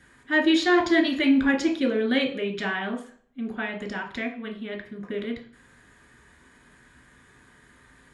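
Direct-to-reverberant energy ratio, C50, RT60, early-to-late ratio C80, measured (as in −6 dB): 1.0 dB, 10.0 dB, 0.45 s, 14.0 dB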